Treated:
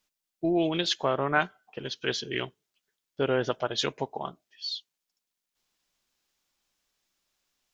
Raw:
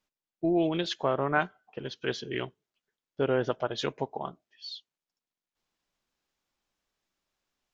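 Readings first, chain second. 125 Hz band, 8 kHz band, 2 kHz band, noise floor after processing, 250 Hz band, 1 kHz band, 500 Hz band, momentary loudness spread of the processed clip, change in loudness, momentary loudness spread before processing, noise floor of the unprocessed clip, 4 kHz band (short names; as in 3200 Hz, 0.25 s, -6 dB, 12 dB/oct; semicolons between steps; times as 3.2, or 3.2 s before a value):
0.0 dB, n/a, +3.0 dB, under -85 dBFS, 0.0 dB, +1.5 dB, +0.5 dB, 12 LU, +1.0 dB, 15 LU, under -85 dBFS, +6.5 dB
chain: high shelf 2500 Hz +9.5 dB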